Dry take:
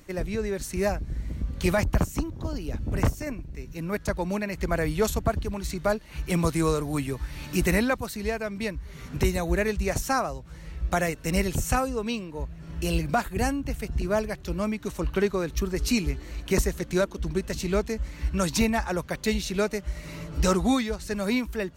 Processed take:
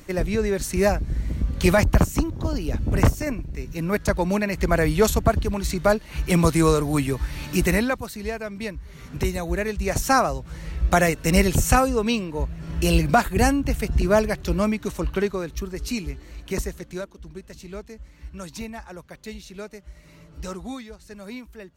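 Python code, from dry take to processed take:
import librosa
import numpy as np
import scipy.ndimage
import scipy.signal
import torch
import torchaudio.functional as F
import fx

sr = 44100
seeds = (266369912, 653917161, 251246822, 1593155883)

y = fx.gain(x, sr, db=fx.line((7.26, 6.0), (8.1, -0.5), (9.73, -0.5), (10.14, 7.0), (14.53, 7.0), (15.7, -3.5), (16.68, -3.5), (17.19, -11.0)))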